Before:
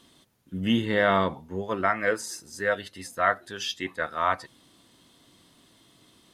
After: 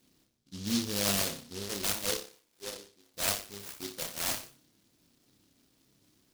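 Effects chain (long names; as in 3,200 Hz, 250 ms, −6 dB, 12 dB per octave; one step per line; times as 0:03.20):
running median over 9 samples
0:02.21–0:03.14: envelope filter 400–1,200 Hz, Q 2.4, down, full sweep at −28 dBFS
on a send: flutter between parallel walls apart 5.1 metres, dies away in 0.39 s
on the sum: short delay modulated by noise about 4,400 Hz, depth 0.32 ms
level −9 dB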